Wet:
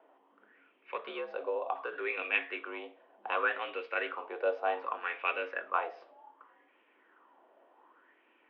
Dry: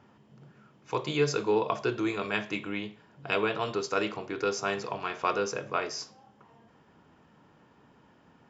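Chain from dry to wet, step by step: mistuned SSB +66 Hz 240–3200 Hz; 0.96–1.93 s: compression 6:1, threshold -29 dBFS, peak gain reduction 8.5 dB; sweeping bell 0.66 Hz 640–2500 Hz +15 dB; trim -8.5 dB

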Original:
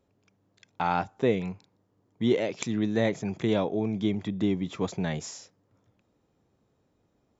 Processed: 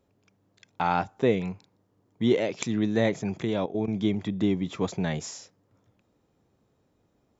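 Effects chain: 3.43–3.88 s: level held to a coarse grid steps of 14 dB; trim +1.5 dB

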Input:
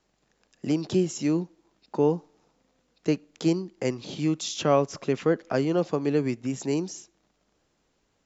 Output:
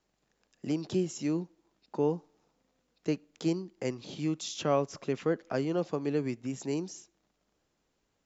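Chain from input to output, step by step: trim -6 dB

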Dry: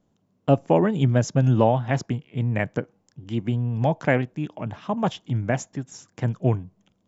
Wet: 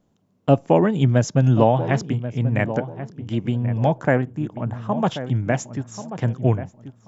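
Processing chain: 3.98–4.92 s: high-order bell 3.5 kHz -9 dB; filtered feedback delay 1085 ms, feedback 28%, low-pass 1.2 kHz, level -11 dB; trim +2.5 dB

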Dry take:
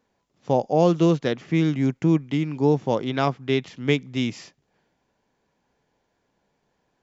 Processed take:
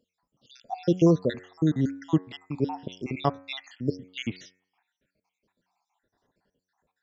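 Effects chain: random holes in the spectrogram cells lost 74%; de-hum 92.03 Hz, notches 28

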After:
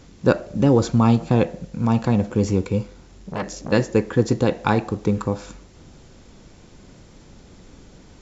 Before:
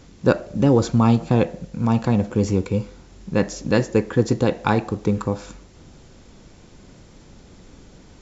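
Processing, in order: 2.83–3.72 s: transformer saturation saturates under 1.8 kHz

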